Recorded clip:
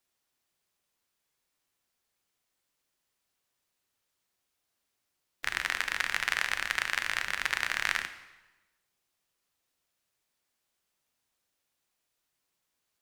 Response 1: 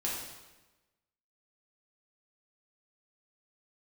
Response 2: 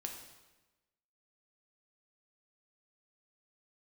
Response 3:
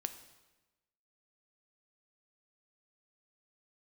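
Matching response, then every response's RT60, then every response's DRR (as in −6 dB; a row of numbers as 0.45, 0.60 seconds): 3; 1.1, 1.1, 1.1 seconds; −5.5, 2.0, 9.0 decibels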